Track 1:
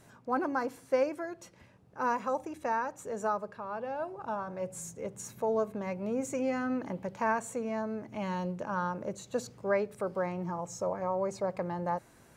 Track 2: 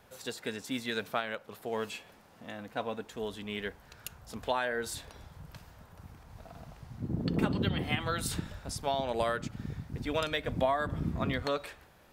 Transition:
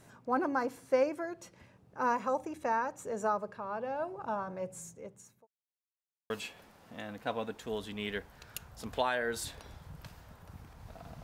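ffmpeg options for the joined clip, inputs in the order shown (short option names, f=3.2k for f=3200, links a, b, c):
-filter_complex "[0:a]apad=whole_dur=11.23,atrim=end=11.23,asplit=2[a][b];[a]atrim=end=5.47,asetpts=PTS-STARTPTS,afade=t=out:st=4.38:d=1.09[c];[b]atrim=start=5.47:end=6.3,asetpts=PTS-STARTPTS,volume=0[d];[1:a]atrim=start=1.8:end=6.73,asetpts=PTS-STARTPTS,afade=t=in:d=0.004:c=hsin[e];[c][d][e]concat=n=3:v=0:a=1"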